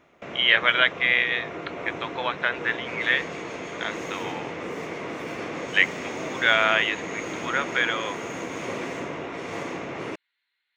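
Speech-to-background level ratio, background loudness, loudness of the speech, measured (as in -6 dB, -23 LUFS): 10.5 dB, -33.5 LUFS, -23.0 LUFS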